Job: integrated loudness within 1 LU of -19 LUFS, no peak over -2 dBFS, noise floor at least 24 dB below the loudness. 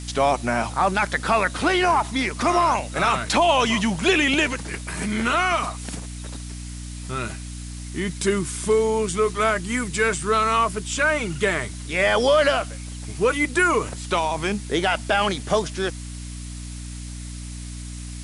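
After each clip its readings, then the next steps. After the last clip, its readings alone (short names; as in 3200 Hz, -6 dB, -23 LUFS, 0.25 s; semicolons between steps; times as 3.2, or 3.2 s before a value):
hum 60 Hz; harmonics up to 300 Hz; hum level -32 dBFS; noise floor -34 dBFS; noise floor target -46 dBFS; loudness -21.5 LUFS; peak -8.5 dBFS; loudness target -19.0 LUFS
-> notches 60/120/180/240/300 Hz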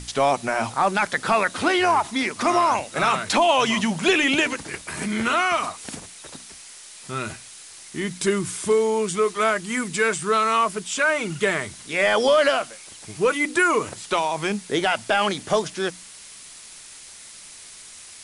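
hum none; noise floor -43 dBFS; noise floor target -46 dBFS
-> noise print and reduce 6 dB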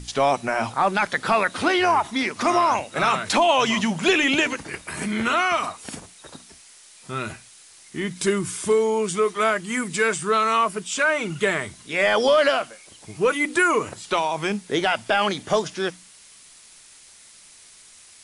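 noise floor -49 dBFS; loudness -22.0 LUFS; peak -8.5 dBFS; loudness target -19.0 LUFS
-> gain +3 dB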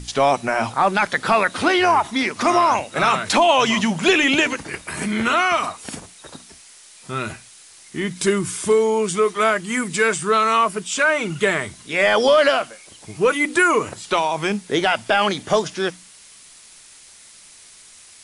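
loudness -19.0 LUFS; peak -5.5 dBFS; noise floor -46 dBFS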